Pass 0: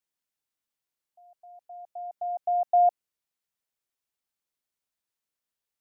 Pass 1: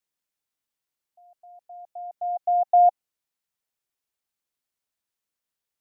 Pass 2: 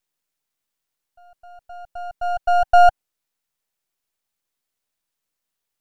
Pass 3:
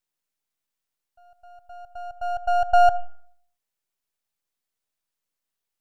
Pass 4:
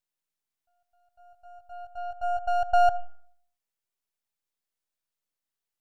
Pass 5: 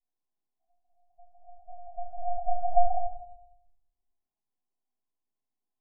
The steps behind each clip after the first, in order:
dynamic equaliser 780 Hz, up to +5 dB, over −36 dBFS, Q 4.1; level +1 dB
gain on one half-wave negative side −12 dB; level +8 dB
convolution reverb RT60 0.60 s, pre-delay 30 ms, DRR 19 dB; level −4.5 dB
backwards echo 502 ms −16 dB; level −4.5 dB
spectrum averaged block by block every 100 ms; Chebyshev low-pass with heavy ripple 1,100 Hz, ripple 9 dB; rectangular room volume 150 cubic metres, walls mixed, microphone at 5.3 metres; level −8.5 dB

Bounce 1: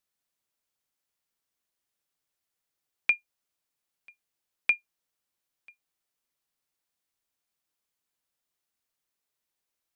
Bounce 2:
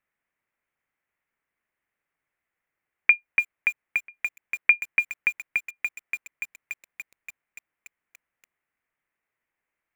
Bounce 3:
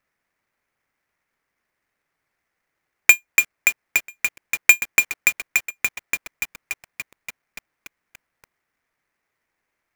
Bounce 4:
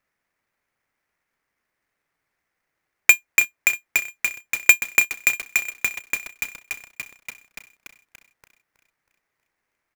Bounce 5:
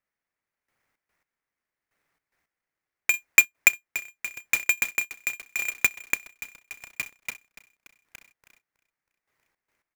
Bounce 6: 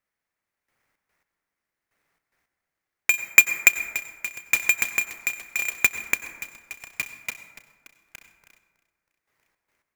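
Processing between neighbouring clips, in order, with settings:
high shelf with overshoot 3,000 Hz −13 dB, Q 3; feedback echo at a low word length 288 ms, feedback 80%, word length 8 bits, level −4 dB; level +4 dB
each half-wave held at its own peak; level +3 dB
repeating echo 320 ms, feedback 49%, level −14.5 dB; level −1 dB
gate pattern ".....xx.x" 110 BPM −12 dB; level +2 dB
dense smooth reverb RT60 1.4 s, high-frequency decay 0.35×, pre-delay 80 ms, DRR 10.5 dB; level +2.5 dB

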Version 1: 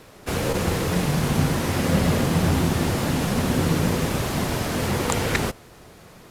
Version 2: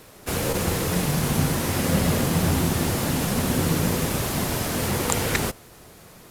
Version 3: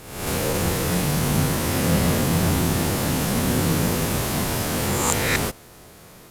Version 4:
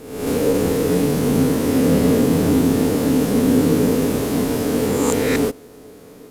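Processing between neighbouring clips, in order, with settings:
high-shelf EQ 7,800 Hz +10.5 dB; level −1.5 dB
peak hold with a rise ahead of every peak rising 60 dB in 0.87 s; level −1 dB
hollow resonant body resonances 280/430 Hz, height 18 dB, ringing for 55 ms; level −3.5 dB

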